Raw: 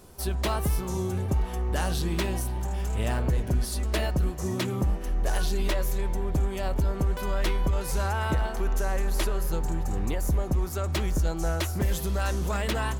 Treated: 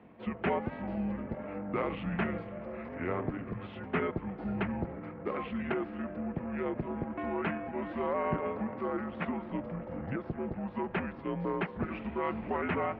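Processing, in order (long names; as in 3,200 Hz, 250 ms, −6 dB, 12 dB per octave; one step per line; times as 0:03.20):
pitch shifter −4.5 semitones
single-sideband voice off tune −82 Hz 210–2,500 Hz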